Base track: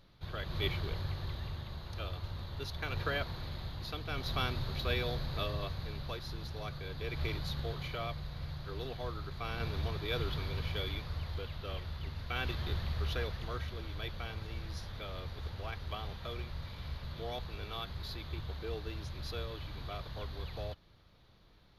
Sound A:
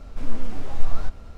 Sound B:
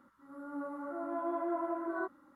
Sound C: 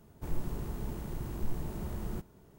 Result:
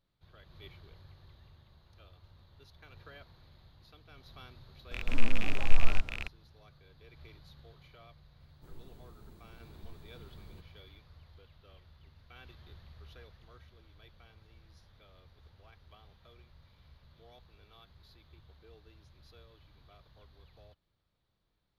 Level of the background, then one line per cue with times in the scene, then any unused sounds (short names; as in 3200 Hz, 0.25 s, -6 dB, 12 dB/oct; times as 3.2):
base track -17.5 dB
4.91 add A -2 dB + rattling part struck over -40 dBFS, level -21 dBFS
8.4 add C -17 dB
not used: B